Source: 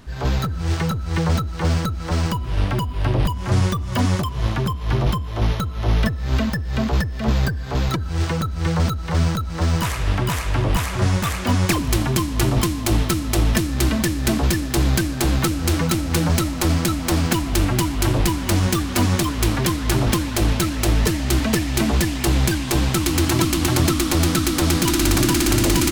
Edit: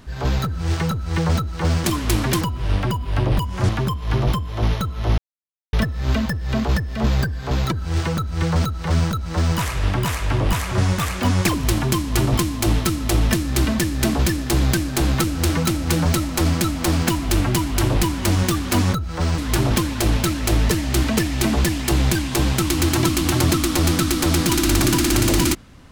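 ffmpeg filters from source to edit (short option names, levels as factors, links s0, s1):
-filter_complex "[0:a]asplit=7[s0][s1][s2][s3][s4][s5][s6];[s0]atrim=end=1.842[s7];[s1]atrim=start=19.168:end=19.742[s8];[s2]atrim=start=2.288:end=3.572[s9];[s3]atrim=start=4.478:end=5.97,asetpts=PTS-STARTPTS,afade=t=out:st=1.488:d=0.004:c=hsin,apad=pad_dur=0.55[s10];[s4]atrim=start=5.97:end=19.172,asetpts=PTS-STARTPTS,afade=t=in:d=0.004:c=hsin[s11];[s5]atrim=start=1.838:end=2.292[s12];[s6]atrim=start=19.738[s13];[s7][s8]acrossfade=d=0.004:c1=hsin:c2=hsin[s14];[s14][s9]acrossfade=d=0.004:c1=hsin:c2=hsin[s15];[s10][s11]concat=n=2:v=0:a=1[s16];[s15][s16]acrossfade=d=0.004:c1=hsin:c2=hsin[s17];[s17][s12]acrossfade=d=0.004:c1=hsin:c2=hsin[s18];[s18][s13]acrossfade=d=0.004:c1=hsin:c2=hsin"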